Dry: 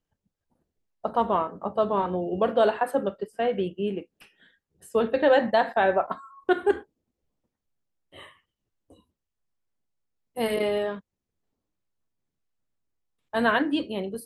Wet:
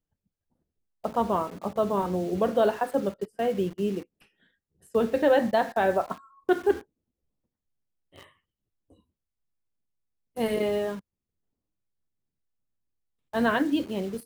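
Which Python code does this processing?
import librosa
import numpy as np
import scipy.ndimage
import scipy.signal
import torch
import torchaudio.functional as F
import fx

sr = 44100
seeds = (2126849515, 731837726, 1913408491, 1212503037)

p1 = fx.low_shelf(x, sr, hz=390.0, db=7.5)
p2 = fx.quant_dither(p1, sr, seeds[0], bits=6, dither='none')
p3 = p1 + (p2 * 10.0 ** (-3.5 / 20.0))
y = p3 * 10.0 ** (-8.5 / 20.0)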